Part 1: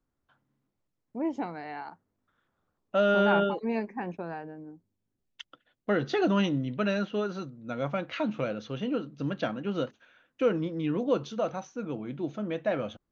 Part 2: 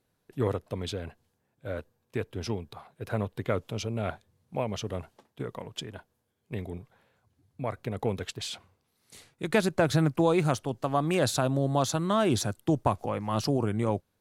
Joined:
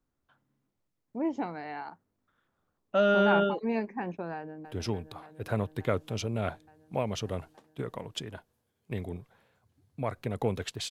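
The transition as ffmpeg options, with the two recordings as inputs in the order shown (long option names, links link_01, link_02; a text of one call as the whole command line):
ffmpeg -i cue0.wav -i cue1.wav -filter_complex "[0:a]apad=whole_dur=10.9,atrim=end=10.9,atrim=end=4.652[link_01];[1:a]atrim=start=2.258:end=8.51[link_02];[link_01][link_02]acrossfade=duration=0.004:curve1=hsin:curve2=hsin,asplit=2[link_03][link_04];[link_04]afade=type=in:start_time=4.35:duration=0.01,afade=type=out:start_time=4.65:duration=0.01,aecho=0:1:290|580|870|1160|1450|1740|2030|2320|2610|2900|3190|3480:0.334965|0.284721|0.242013|0.205711|0.174854|0.148626|0.126332|0.107382|0.0912749|0.0775837|0.0659461|0.0560542[link_05];[link_03][link_05]amix=inputs=2:normalize=0" out.wav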